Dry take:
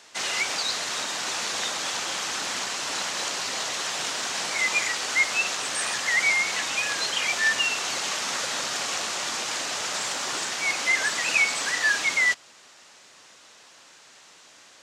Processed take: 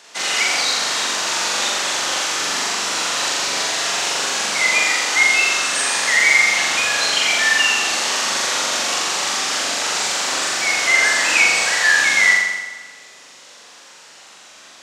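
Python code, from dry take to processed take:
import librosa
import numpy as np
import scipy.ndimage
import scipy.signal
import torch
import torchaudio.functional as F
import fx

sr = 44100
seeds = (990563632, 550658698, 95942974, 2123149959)

y = scipy.signal.sosfilt(scipy.signal.butter(2, 68.0, 'highpass', fs=sr, output='sos'), x)
y = fx.low_shelf(y, sr, hz=100.0, db=-11.0)
y = fx.room_flutter(y, sr, wall_m=7.3, rt60_s=1.2)
y = F.gain(torch.from_numpy(y), 4.5).numpy()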